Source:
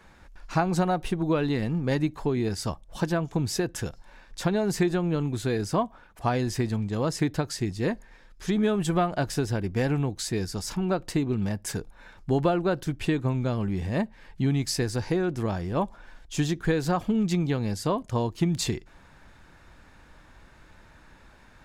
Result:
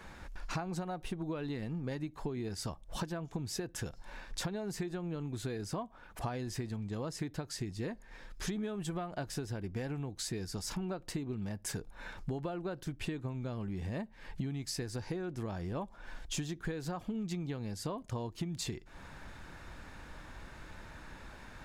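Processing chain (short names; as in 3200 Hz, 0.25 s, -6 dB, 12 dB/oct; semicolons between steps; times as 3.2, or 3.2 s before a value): compressor 8:1, threshold -39 dBFS, peak gain reduction 20 dB; gain +3.5 dB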